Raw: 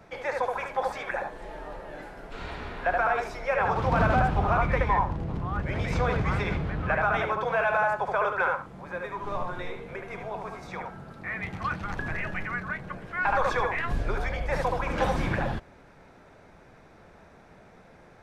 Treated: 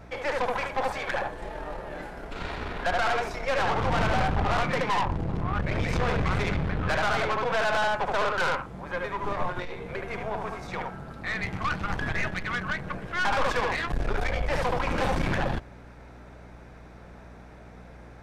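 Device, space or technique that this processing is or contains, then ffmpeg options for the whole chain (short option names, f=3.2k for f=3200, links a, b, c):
valve amplifier with mains hum: -filter_complex "[0:a]asettb=1/sr,asplit=3[a][b][c];[a]atrim=end=4.634[d];[b]atrim=start=4.63:end=5.05,asetpts=PTS-STARTPTS,afade=t=in:d=0.004:c=qsin,afade=t=out:st=0.416:d=0.004:c=qsin,highpass=f=140:w=0.5412,highpass=f=140:w=1.3066[e];[c]atrim=start=5.046[f];[d][e]acrossfade=d=0.004:c1=hsin:c2=qsin[g];[g][f]acrossfade=d=0.004:c1=qsin:c2=hsin,aeval=exprs='(tanh(28.2*val(0)+0.65)-tanh(0.65))/28.2':c=same,aeval=exprs='val(0)+0.002*(sin(2*PI*60*n/s)+sin(2*PI*2*60*n/s)/2+sin(2*PI*3*60*n/s)/3+sin(2*PI*4*60*n/s)/4+sin(2*PI*5*60*n/s)/5)':c=same,volume=6.5dB"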